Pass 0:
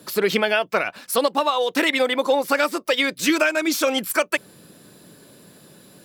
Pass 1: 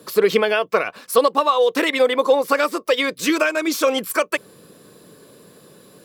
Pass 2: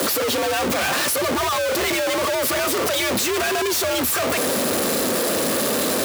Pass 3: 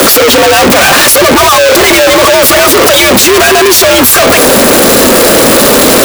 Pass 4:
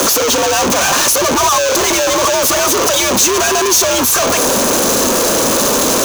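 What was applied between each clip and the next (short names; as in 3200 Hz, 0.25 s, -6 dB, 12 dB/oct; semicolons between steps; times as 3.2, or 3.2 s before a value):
small resonant body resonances 460/1100 Hz, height 9 dB, ringing for 25 ms; gain -1 dB
infinite clipping; frequency shift +70 Hz; gain -1 dB
sample leveller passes 5; gain +7.5 dB
thirty-one-band EQ 1000 Hz +6 dB, 2000 Hz -5 dB, 6300 Hz +12 dB; gain -10 dB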